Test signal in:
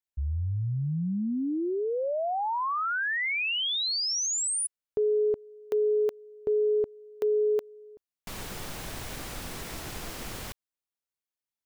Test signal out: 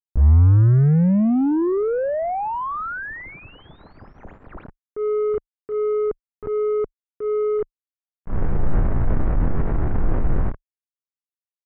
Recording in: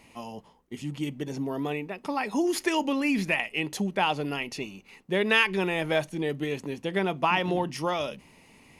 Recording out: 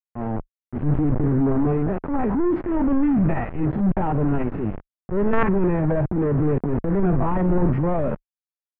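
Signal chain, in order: stepped spectrum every 50 ms; companded quantiser 2-bit; tilt -4 dB/oct; transient shaper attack -7 dB, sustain +5 dB; LPF 1700 Hz 24 dB/oct

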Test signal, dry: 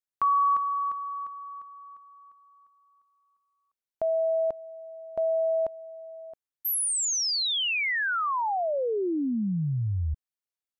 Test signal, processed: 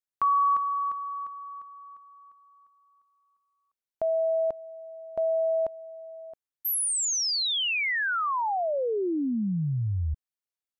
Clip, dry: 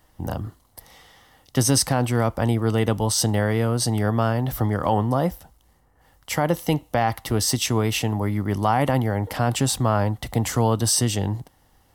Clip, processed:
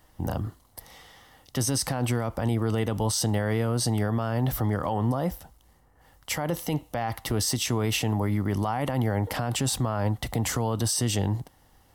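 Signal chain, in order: limiter -17 dBFS

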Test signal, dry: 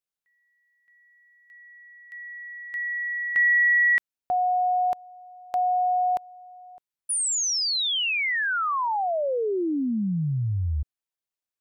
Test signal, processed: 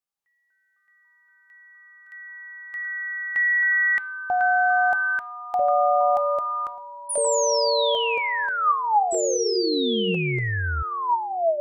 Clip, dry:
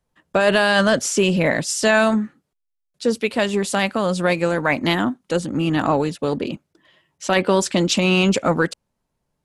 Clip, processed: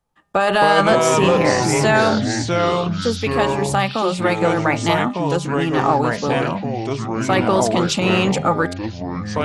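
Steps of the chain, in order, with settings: small resonant body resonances 830/1200 Hz, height 12 dB, ringing for 45 ms; echoes that change speed 0.175 s, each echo -4 st, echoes 3; de-hum 201.8 Hz, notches 22; gain -1.5 dB

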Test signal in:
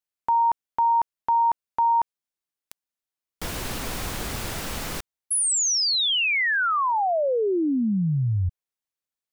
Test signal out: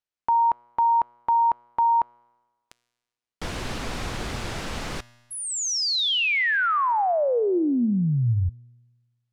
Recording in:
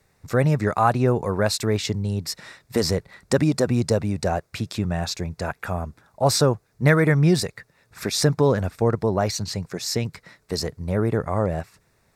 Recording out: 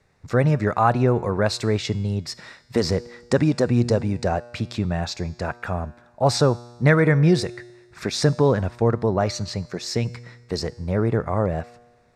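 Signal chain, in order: air absorption 71 m; resonator 120 Hz, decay 1.3 s, harmonics all, mix 50%; gain +6.5 dB

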